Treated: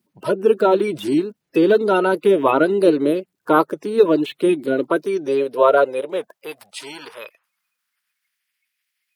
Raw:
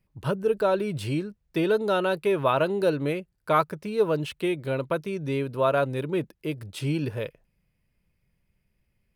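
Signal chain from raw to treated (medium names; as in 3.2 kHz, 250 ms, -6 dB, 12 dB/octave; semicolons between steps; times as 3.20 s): coarse spectral quantiser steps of 30 dB; high-pass sweep 300 Hz -> 2 kHz, 4.74–8.54 s; trim +5.5 dB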